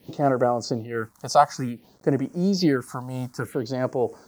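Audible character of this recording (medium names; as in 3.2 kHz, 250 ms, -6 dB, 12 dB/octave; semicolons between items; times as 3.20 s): a quantiser's noise floor 10-bit, dither none; phasing stages 4, 0.56 Hz, lowest notch 350–3800 Hz; random flutter of the level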